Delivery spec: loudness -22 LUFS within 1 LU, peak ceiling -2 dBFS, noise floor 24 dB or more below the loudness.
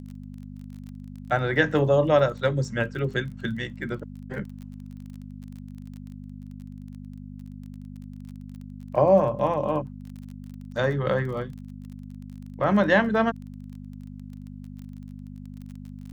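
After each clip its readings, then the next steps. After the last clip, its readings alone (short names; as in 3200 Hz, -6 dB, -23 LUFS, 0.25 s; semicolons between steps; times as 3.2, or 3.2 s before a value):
ticks 26/s; hum 50 Hz; harmonics up to 250 Hz; hum level -37 dBFS; loudness -24.5 LUFS; peak -6.0 dBFS; loudness target -22.0 LUFS
-> de-click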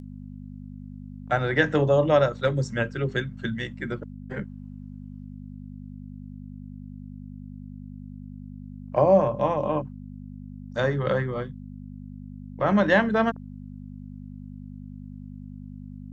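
ticks 0.062/s; hum 50 Hz; harmonics up to 250 Hz; hum level -37 dBFS
-> de-hum 50 Hz, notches 5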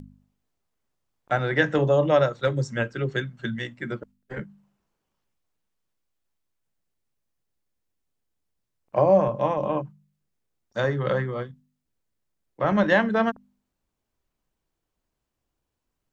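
hum none; loudness -24.0 LUFS; peak -6.0 dBFS; loudness target -22.0 LUFS
-> gain +2 dB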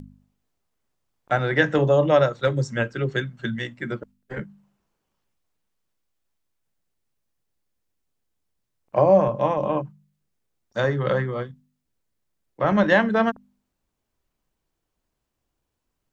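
loudness -22.0 LUFS; peak -4.0 dBFS; noise floor -79 dBFS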